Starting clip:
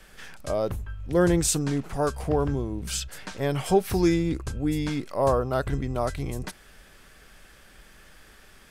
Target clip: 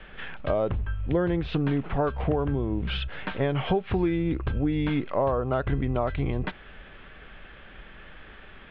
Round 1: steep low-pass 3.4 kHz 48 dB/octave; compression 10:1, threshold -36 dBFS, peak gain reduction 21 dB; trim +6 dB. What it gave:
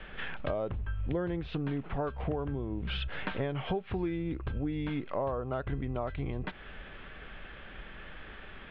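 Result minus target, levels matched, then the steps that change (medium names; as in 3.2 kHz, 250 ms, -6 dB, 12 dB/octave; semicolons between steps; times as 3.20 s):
compression: peak gain reduction +8 dB
change: compression 10:1, threshold -27 dBFS, peak gain reduction 13 dB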